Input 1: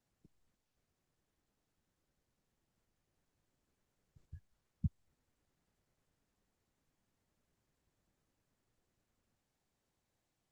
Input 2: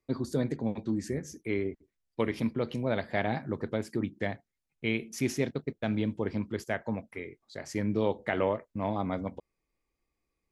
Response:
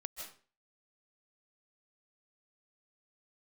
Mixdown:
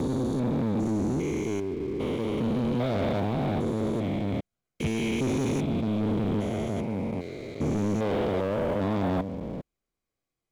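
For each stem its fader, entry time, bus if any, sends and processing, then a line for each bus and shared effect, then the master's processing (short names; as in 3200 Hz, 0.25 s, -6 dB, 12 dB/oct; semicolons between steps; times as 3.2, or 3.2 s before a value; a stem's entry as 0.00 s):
+1.5 dB, 0.00 s, no send, notch comb 900 Hz
+2.0 dB, 0.00 s, no send, stepped spectrum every 0.4 s; envelope flanger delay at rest 9.3 ms, full sweep at -50 dBFS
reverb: off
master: sample leveller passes 3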